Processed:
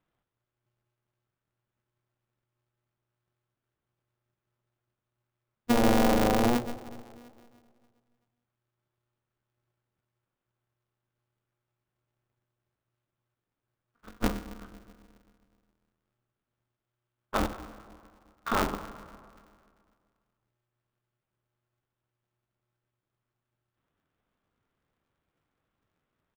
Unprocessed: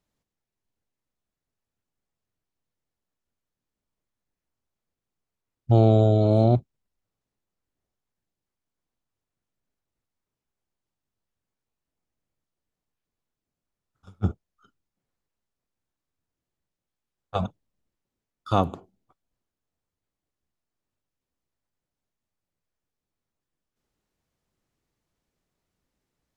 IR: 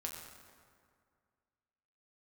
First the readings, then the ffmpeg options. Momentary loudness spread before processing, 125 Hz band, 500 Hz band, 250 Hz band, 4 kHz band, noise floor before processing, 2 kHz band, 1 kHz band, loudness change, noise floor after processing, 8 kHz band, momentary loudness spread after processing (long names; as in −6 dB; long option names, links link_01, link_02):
13 LU, −15.5 dB, −5.5 dB, −1.5 dB, +5.0 dB, below −85 dBFS, +14.5 dB, 0.0 dB, −5.5 dB, below −85 dBFS, can't be measured, 22 LU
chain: -filter_complex "[0:a]equalizer=frequency=1300:width_type=o:width=0.55:gain=8,alimiter=limit=-15dB:level=0:latency=1:release=17,asplit=2[link_01][link_02];[1:a]atrim=start_sample=2205,adelay=72[link_03];[link_02][link_03]afir=irnorm=-1:irlink=0,volume=-9dB[link_04];[link_01][link_04]amix=inputs=2:normalize=0,aresample=8000,aresample=44100,aeval=exprs='val(0)*sgn(sin(2*PI*120*n/s))':channel_layout=same,volume=-1dB"